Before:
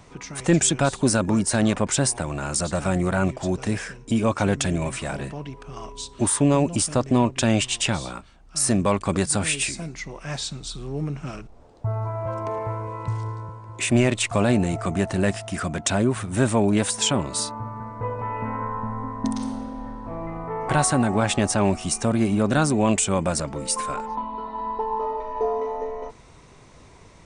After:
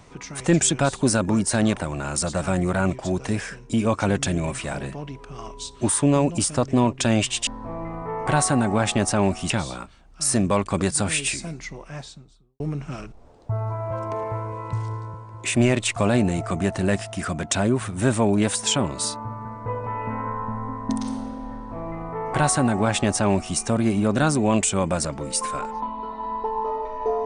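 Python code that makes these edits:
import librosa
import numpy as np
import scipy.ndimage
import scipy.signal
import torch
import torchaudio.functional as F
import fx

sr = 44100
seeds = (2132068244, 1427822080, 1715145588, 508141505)

y = fx.studio_fade_out(x, sr, start_s=9.87, length_s=1.08)
y = fx.edit(y, sr, fx.cut(start_s=1.77, length_s=0.38),
    fx.duplicate(start_s=19.89, length_s=2.03, to_s=7.85), tone=tone)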